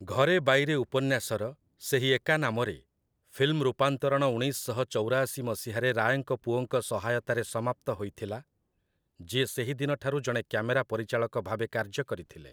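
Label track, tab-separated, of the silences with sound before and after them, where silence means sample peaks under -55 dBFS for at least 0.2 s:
1.550000	1.800000	silence
2.820000	3.280000	silence
8.420000	9.200000	silence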